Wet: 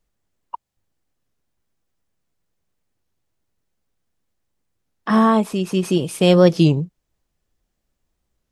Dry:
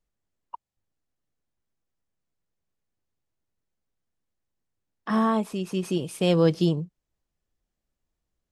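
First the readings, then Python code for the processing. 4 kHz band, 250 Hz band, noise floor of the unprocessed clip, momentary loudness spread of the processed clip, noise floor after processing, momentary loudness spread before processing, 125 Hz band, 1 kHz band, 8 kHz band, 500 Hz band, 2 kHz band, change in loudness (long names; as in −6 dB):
+8.0 dB, +8.0 dB, −84 dBFS, 11 LU, −76 dBFS, 11 LU, +8.0 dB, +8.0 dB, +8.0 dB, +8.0 dB, +8.5 dB, +8.0 dB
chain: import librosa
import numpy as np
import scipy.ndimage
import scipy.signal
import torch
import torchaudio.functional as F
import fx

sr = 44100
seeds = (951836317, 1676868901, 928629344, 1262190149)

y = fx.record_warp(x, sr, rpm=33.33, depth_cents=160.0)
y = F.gain(torch.from_numpy(y), 8.0).numpy()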